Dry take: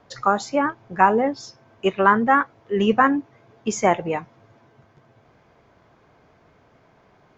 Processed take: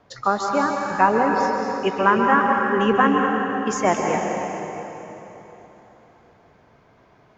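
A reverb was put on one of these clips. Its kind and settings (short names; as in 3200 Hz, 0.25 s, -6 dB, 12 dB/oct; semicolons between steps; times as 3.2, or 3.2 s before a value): plate-style reverb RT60 3.6 s, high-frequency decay 0.8×, pre-delay 0.12 s, DRR 0.5 dB; gain -1.5 dB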